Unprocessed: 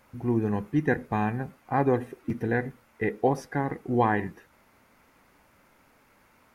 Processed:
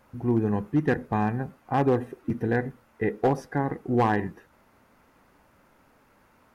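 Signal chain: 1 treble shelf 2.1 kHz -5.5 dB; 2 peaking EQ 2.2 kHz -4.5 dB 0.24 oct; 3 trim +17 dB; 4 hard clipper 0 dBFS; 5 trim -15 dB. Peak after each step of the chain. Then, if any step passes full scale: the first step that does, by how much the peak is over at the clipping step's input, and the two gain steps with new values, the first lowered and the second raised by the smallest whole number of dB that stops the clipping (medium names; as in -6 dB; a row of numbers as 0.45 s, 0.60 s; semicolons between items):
-10.5 dBFS, -10.5 dBFS, +6.5 dBFS, 0.0 dBFS, -15.0 dBFS; step 3, 6.5 dB; step 3 +10 dB, step 5 -8 dB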